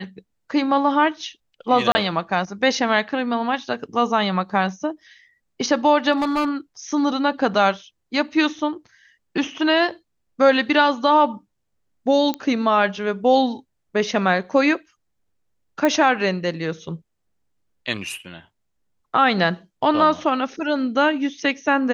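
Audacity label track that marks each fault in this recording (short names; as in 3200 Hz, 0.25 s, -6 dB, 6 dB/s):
1.920000	1.950000	gap 30 ms
6.120000	6.490000	clipped -16.5 dBFS
12.340000	12.340000	pop -11 dBFS
15.850000	15.850000	pop -8 dBFS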